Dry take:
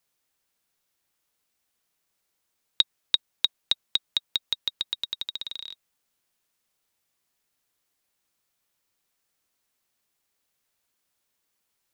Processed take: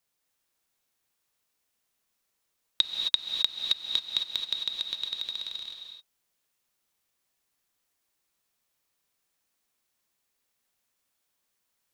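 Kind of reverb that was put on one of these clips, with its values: non-linear reverb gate 0.29 s rising, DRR 2 dB; gain -3 dB

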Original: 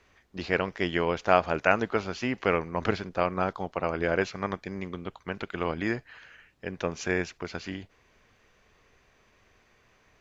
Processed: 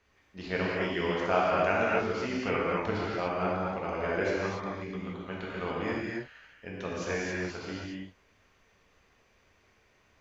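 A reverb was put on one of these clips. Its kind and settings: non-linear reverb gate 0.31 s flat, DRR -6 dB; gain -9 dB

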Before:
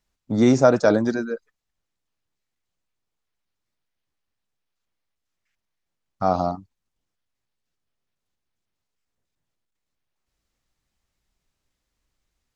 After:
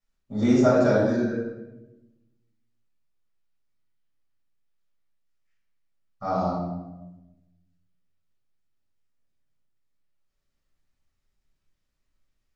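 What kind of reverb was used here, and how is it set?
shoebox room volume 400 m³, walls mixed, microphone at 6.2 m; gain -17.5 dB

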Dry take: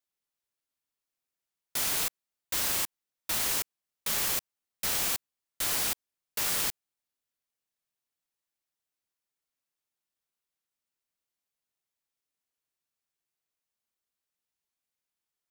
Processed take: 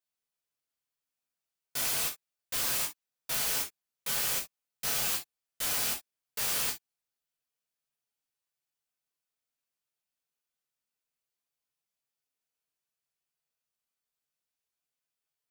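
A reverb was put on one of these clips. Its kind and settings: non-linear reverb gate 90 ms falling, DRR -2 dB; gain -5.5 dB

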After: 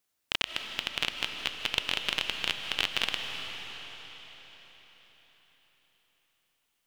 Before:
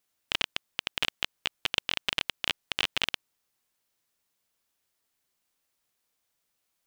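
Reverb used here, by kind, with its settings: digital reverb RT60 4.8 s, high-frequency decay 0.95×, pre-delay 0.115 s, DRR 4.5 dB; gain -1 dB

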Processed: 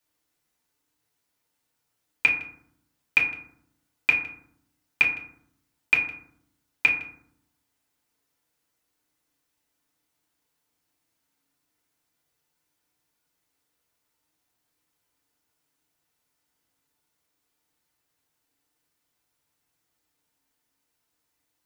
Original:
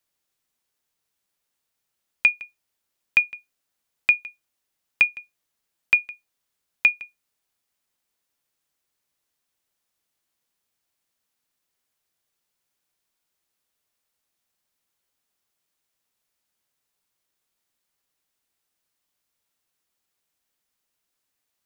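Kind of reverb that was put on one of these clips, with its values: FDN reverb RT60 0.66 s, low-frequency decay 1.6×, high-frequency decay 0.4×, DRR -3.5 dB; gain -1.5 dB

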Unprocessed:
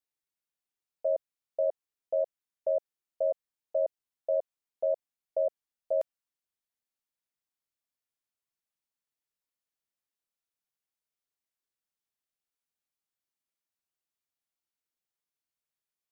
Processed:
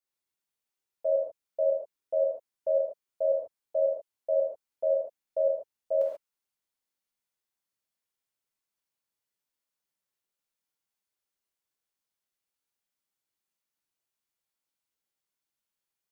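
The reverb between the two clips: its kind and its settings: non-linear reverb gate 0.16 s flat, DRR -4.5 dB; gain -3 dB

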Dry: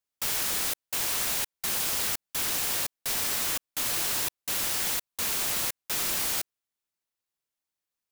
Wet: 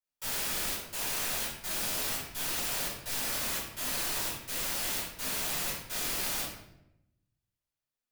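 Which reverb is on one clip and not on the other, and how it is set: shoebox room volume 250 m³, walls mixed, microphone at 4.7 m; gain -15.5 dB

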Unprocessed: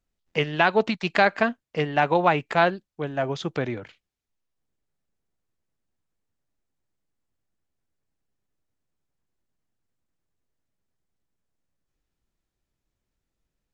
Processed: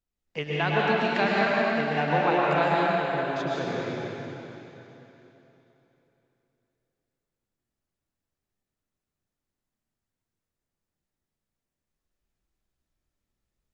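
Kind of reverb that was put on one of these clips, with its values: plate-style reverb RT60 3.4 s, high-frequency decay 0.95×, pre-delay 95 ms, DRR -6.5 dB; gain -8.5 dB

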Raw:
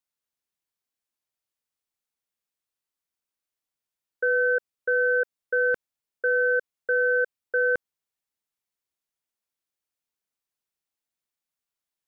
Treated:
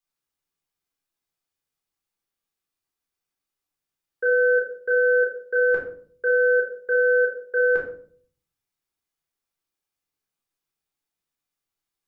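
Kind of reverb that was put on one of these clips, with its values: shoebox room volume 540 m³, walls furnished, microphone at 3.9 m; gain -3 dB

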